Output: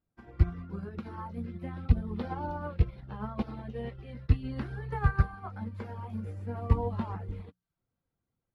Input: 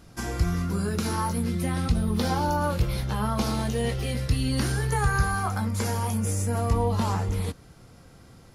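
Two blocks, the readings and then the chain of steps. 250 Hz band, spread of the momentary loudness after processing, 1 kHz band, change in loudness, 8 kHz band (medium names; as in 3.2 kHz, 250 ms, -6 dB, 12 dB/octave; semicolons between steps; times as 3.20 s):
-9.0 dB, 11 LU, -10.5 dB, -7.0 dB, under -35 dB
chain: reverb removal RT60 0.59 s; distance through air 460 m; hum notches 60/120/180 Hz; feedback echo behind a high-pass 317 ms, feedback 83%, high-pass 5 kHz, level -11 dB; upward expansion 2.5:1, over -44 dBFS; trim +4 dB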